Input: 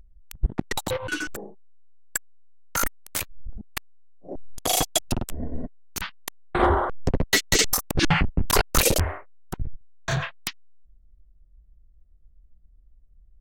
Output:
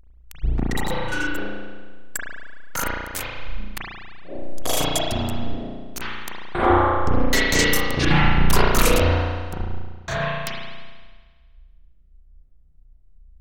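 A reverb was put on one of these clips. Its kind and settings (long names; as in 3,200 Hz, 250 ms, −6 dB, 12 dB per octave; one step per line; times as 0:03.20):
spring reverb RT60 1.5 s, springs 34 ms, chirp 50 ms, DRR −6 dB
level −2.5 dB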